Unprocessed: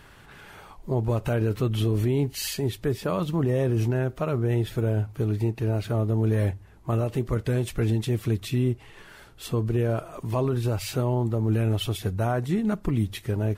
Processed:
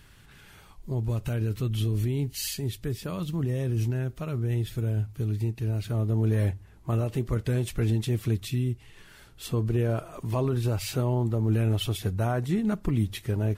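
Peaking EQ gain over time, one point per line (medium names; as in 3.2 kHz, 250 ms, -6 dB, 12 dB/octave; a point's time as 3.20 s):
peaking EQ 730 Hz 2.9 oct
5.76 s -11.5 dB
6.17 s -4.5 dB
8.34 s -4.5 dB
8.66 s -13.5 dB
9.62 s -3 dB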